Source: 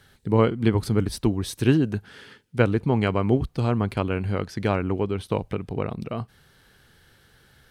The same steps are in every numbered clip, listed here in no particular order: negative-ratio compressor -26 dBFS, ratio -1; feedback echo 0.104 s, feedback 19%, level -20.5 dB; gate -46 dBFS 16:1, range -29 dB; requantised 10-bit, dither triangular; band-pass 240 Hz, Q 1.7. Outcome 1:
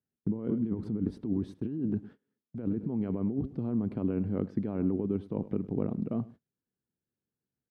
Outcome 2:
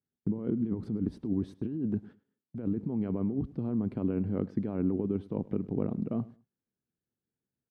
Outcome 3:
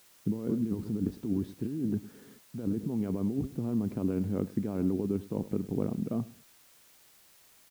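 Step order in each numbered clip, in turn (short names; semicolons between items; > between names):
feedback echo > requantised > negative-ratio compressor > band-pass > gate; requantised > negative-ratio compressor > band-pass > gate > feedback echo; feedback echo > negative-ratio compressor > gate > band-pass > requantised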